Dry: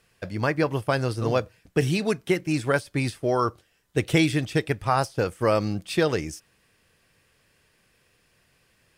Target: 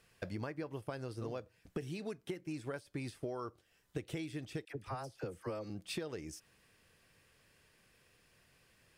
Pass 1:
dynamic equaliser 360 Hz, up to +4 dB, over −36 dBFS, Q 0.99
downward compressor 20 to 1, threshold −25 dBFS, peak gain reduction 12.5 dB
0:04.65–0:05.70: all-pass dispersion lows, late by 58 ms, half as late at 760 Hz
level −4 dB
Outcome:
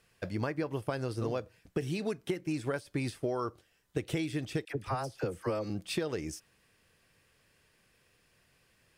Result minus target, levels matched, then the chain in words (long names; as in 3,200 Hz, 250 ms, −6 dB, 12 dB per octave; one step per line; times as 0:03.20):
downward compressor: peak gain reduction −8 dB
dynamic equaliser 360 Hz, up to +4 dB, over −36 dBFS, Q 0.99
downward compressor 20 to 1, threshold −33.5 dBFS, peak gain reduction 21 dB
0:04.65–0:05.70: all-pass dispersion lows, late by 58 ms, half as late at 760 Hz
level −4 dB